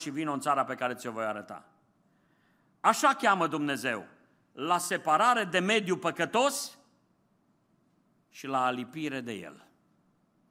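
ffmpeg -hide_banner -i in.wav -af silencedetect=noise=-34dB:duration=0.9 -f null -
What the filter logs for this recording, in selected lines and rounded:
silence_start: 1.58
silence_end: 2.84 | silence_duration: 1.26
silence_start: 6.66
silence_end: 8.44 | silence_duration: 1.78
silence_start: 9.49
silence_end: 10.50 | silence_duration: 1.01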